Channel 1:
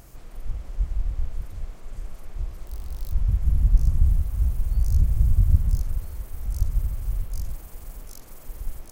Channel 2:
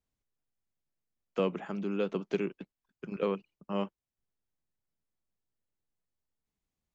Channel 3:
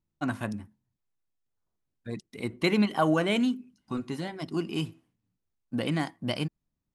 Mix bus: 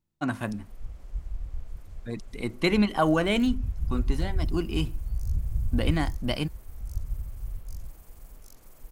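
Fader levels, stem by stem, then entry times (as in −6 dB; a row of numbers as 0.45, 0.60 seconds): −8.5 dB, muted, +1.5 dB; 0.35 s, muted, 0.00 s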